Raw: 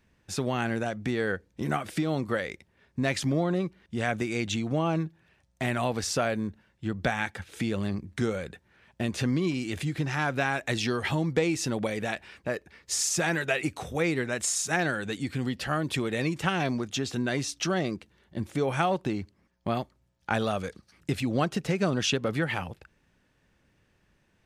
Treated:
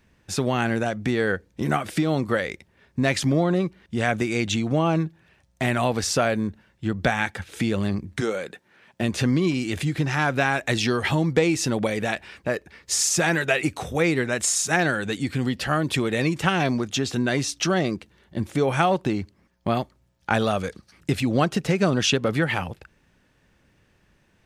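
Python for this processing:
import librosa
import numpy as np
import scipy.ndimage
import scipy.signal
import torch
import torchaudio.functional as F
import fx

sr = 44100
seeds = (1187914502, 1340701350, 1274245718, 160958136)

y = fx.highpass(x, sr, hz=fx.line((8.2, 340.0), (9.01, 150.0)), slope=12, at=(8.2, 9.01), fade=0.02)
y = y * 10.0 ** (5.5 / 20.0)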